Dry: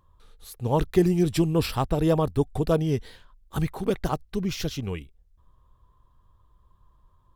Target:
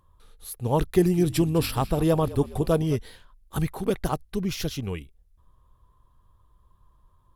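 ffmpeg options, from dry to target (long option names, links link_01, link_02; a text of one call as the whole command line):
ffmpeg -i in.wav -filter_complex "[0:a]equalizer=frequency=11000:width=2.6:gain=9,asettb=1/sr,asplit=3[link_01][link_02][link_03];[link_01]atrim=end=0.874[link_04];[link_02]atrim=start=0.87:end=2.96,asetpts=PTS-STARTPTS,afade=type=in:duration=0.004:curve=qsin,afade=type=out:start_time=2.086:duration=0.004:curve=qsin,asplit=6[link_05][link_06][link_07][link_08][link_09][link_10];[link_06]adelay=206,afreqshift=-46,volume=-17.5dB[link_11];[link_07]adelay=412,afreqshift=-92,volume=-22.2dB[link_12];[link_08]adelay=618,afreqshift=-138,volume=-27dB[link_13];[link_09]adelay=824,afreqshift=-184,volume=-31.7dB[link_14];[link_10]adelay=1030,afreqshift=-230,volume=-36.4dB[link_15];[link_05][link_11][link_12][link_13][link_14][link_15]amix=inputs=6:normalize=0,atrim=end_sample=92169[link_16];[link_03]atrim=start=2.956[link_17];[link_04][link_16]acrossfade=duration=0.004:curve1=hsin:curve2=qsin[link_18];[link_18][link_17]acrossfade=duration=0.004:curve1=qsin:curve2=hsin" out.wav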